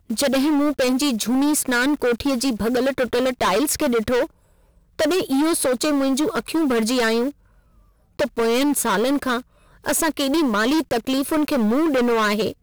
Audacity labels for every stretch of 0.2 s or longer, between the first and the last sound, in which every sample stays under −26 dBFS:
4.250000	4.990000	silence
7.300000	8.190000	silence
9.390000	9.860000	silence